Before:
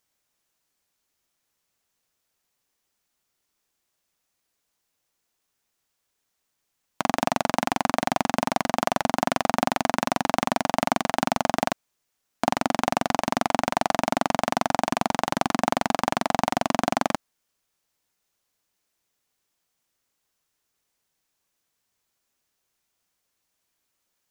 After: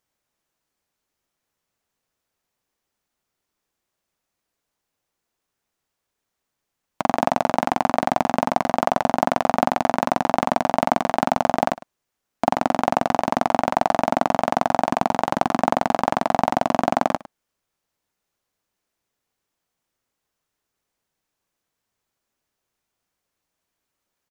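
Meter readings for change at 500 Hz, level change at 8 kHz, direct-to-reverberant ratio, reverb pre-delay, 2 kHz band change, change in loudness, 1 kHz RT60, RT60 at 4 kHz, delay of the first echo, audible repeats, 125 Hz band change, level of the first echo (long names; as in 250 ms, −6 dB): +5.0 dB, −5.0 dB, no reverb audible, no reverb audible, 0.0 dB, +3.5 dB, no reverb audible, no reverb audible, 105 ms, 1, +2.5 dB, −18.5 dB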